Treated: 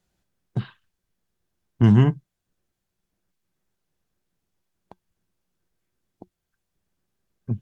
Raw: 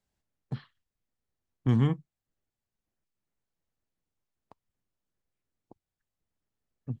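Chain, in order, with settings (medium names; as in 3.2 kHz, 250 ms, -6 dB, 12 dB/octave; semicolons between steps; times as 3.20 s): small resonant body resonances 200/390/1700/3700 Hz, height 7 dB, ringing for 95 ms; speed mistake 48 kHz file played as 44.1 kHz; trim +8 dB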